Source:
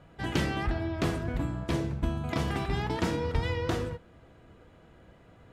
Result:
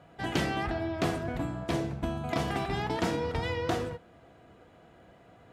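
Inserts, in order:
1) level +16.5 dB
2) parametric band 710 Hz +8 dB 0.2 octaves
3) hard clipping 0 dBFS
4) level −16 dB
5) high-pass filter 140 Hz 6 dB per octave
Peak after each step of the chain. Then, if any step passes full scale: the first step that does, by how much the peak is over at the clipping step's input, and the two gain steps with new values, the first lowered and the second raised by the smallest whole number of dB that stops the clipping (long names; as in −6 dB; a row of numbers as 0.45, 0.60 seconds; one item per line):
+2.5, +3.5, 0.0, −16.0, −14.5 dBFS
step 1, 3.5 dB
step 1 +12.5 dB, step 4 −12 dB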